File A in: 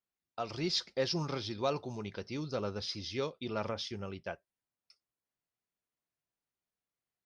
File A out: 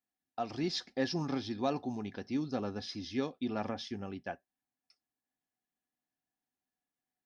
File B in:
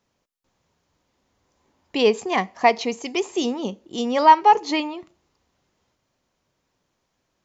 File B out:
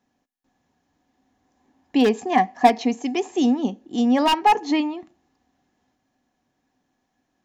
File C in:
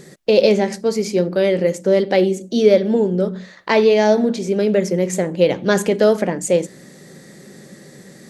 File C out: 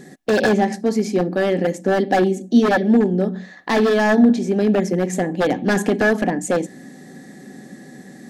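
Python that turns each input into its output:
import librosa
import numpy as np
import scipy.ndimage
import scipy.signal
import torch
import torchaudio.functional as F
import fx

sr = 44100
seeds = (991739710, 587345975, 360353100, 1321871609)

y = fx.notch(x, sr, hz=4700.0, q=22.0)
y = 10.0 ** (-10.0 / 20.0) * (np.abs((y / 10.0 ** (-10.0 / 20.0) + 3.0) % 4.0 - 2.0) - 1.0)
y = fx.small_body(y, sr, hz=(260.0, 750.0, 1700.0), ring_ms=45, db=14)
y = y * 10.0 ** (-4.0 / 20.0)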